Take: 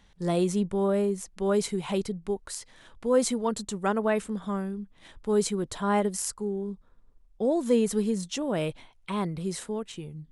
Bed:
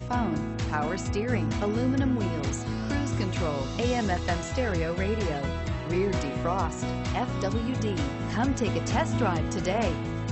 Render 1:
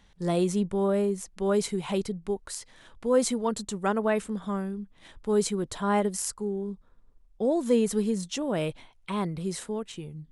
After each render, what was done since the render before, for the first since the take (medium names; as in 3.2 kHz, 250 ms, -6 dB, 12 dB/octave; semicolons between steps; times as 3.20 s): no audible change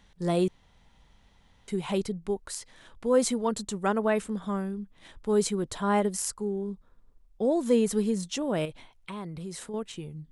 0.48–1.68 s: room tone; 8.65–9.74 s: compression 2.5:1, threshold -37 dBFS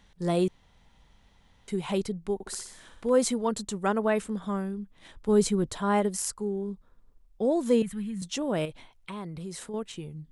2.34–3.10 s: flutter echo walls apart 10.6 m, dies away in 0.6 s; 5.28–5.69 s: bass shelf 180 Hz +10 dB; 7.82–8.22 s: FFT filter 170 Hz 0 dB, 440 Hz -23 dB, 770 Hz -14 dB, 1.9 kHz -1 dB, 3.2 kHz -6 dB, 5.3 kHz -20 dB, 8.7 kHz -10 dB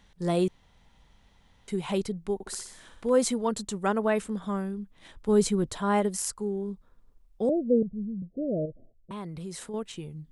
7.49–9.11 s: steep low-pass 660 Hz 96 dB/octave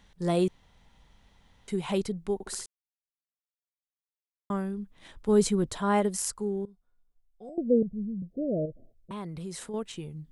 2.66–4.50 s: mute; 6.65–7.58 s: feedback comb 720 Hz, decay 0.35 s, mix 90%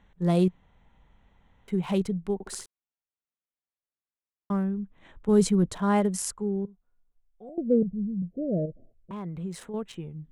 local Wiener filter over 9 samples; dynamic bell 180 Hz, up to +7 dB, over -44 dBFS, Q 3.5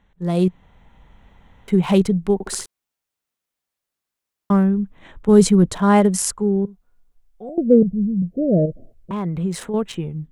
level rider gain up to 11.5 dB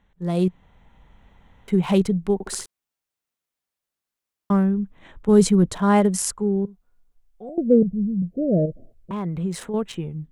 trim -3 dB